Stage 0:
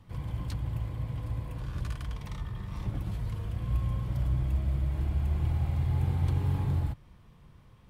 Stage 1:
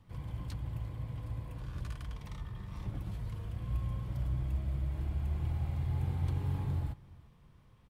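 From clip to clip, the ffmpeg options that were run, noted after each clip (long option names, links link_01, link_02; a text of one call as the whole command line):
ffmpeg -i in.wav -af "aecho=1:1:347:0.075,volume=-5.5dB" out.wav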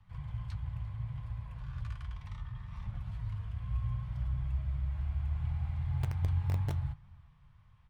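ffmpeg -i in.wav -filter_complex "[0:a]aemphasis=mode=reproduction:type=75fm,acrossover=split=160|750[link_01][link_02][link_03];[link_02]acrusher=bits=5:mix=0:aa=0.000001[link_04];[link_01][link_04][link_03]amix=inputs=3:normalize=0,flanger=delay=4.5:depth=7.8:regen=70:speed=0.7:shape=triangular,volume=5.5dB" out.wav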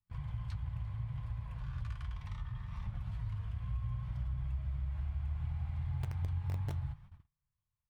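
ffmpeg -i in.wav -af "agate=range=-30dB:threshold=-52dB:ratio=16:detection=peak,acompressor=threshold=-37dB:ratio=2.5,volume=1.5dB" out.wav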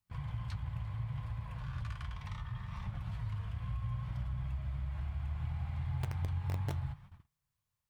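ffmpeg -i in.wav -af "lowshelf=frequency=80:gain=-11,volume=5dB" out.wav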